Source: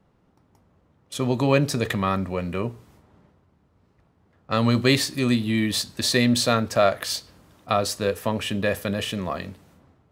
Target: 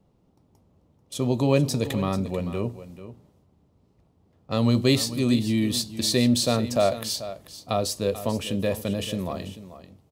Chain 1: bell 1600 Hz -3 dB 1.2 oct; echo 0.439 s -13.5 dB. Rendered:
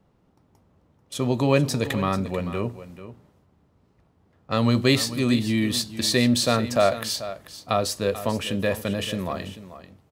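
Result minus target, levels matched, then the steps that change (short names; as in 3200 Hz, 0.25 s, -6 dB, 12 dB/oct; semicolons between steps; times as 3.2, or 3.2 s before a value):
2000 Hz band +5.0 dB
change: bell 1600 Hz -12.5 dB 1.2 oct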